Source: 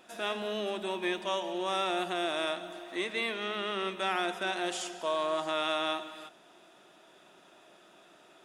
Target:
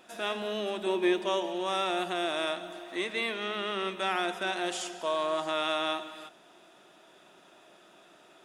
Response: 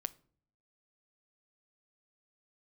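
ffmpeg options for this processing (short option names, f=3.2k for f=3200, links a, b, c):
-filter_complex "[0:a]asettb=1/sr,asplit=3[a][b][c];[a]atrim=end=0.864[d];[b]atrim=start=0.86:end=1.46,asetpts=PTS-STARTPTS,afade=t=in:d=0.004:c=qsin,afade=t=out:st=0.596:d=0.004:c=qsin,equalizer=f=380:t=o:w=0.77:g=7.5[e];[c]atrim=start=1.456[f];[d][e]acrossfade=d=0.004:c1=hsin:c2=qsin[g];[g][f]acrossfade=d=0.004:c1=qsin:c2=hsin,volume=1dB"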